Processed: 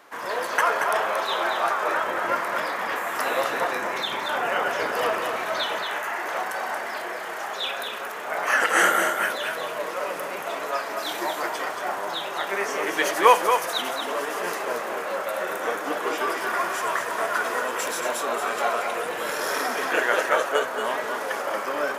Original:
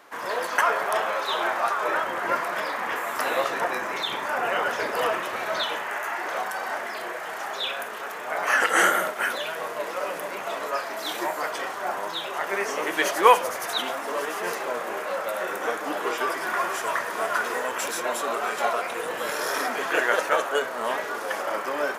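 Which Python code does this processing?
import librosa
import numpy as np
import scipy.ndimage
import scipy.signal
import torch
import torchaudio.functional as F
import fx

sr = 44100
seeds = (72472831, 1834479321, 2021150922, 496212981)

y = x + 10.0 ** (-6.0 / 20.0) * np.pad(x, (int(229 * sr / 1000.0), 0))[:len(x)]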